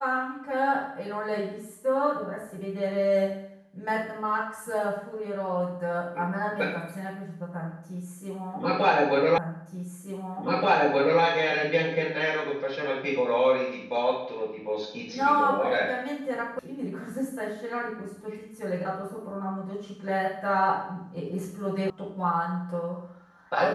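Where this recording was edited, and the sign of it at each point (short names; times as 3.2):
9.38 repeat of the last 1.83 s
16.59 sound cut off
21.9 sound cut off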